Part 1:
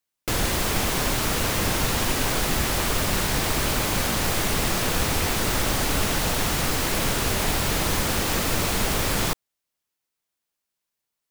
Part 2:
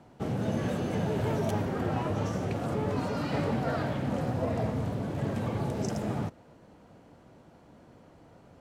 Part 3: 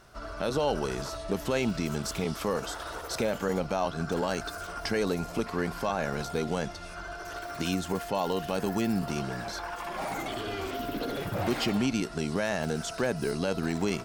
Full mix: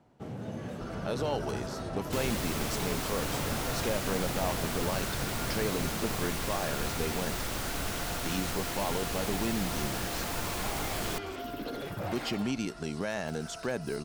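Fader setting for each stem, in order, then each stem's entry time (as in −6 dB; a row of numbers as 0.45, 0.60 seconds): −11.0, −8.5, −4.5 decibels; 1.85, 0.00, 0.65 seconds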